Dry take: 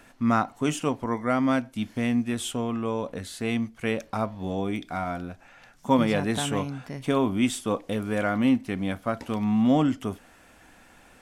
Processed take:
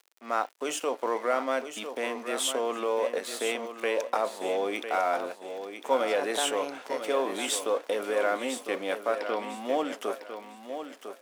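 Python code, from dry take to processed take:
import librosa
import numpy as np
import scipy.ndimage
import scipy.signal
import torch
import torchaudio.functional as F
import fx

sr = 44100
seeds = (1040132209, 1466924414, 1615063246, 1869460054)

p1 = fx.fade_in_head(x, sr, length_s=1.02)
p2 = fx.peak_eq(p1, sr, hz=520.0, db=6.0, octaves=0.53)
p3 = fx.over_compress(p2, sr, threshold_db=-29.0, ratio=-1.0)
p4 = p2 + (p3 * 10.0 ** (2.5 / 20.0))
p5 = np.sign(p4) * np.maximum(np.abs(p4) - 10.0 ** (-39.0 / 20.0), 0.0)
p6 = fx.brickwall_lowpass(p5, sr, high_hz=5700.0, at=(9.15, 9.55))
p7 = fx.dmg_crackle(p6, sr, seeds[0], per_s=48.0, level_db=-37.0)
p8 = scipy.signal.sosfilt(scipy.signal.butter(4, 380.0, 'highpass', fs=sr, output='sos'), p7)
p9 = fx.echo_feedback(p8, sr, ms=1002, feedback_pct=25, wet_db=-9)
y = p9 * 10.0 ** (-5.0 / 20.0)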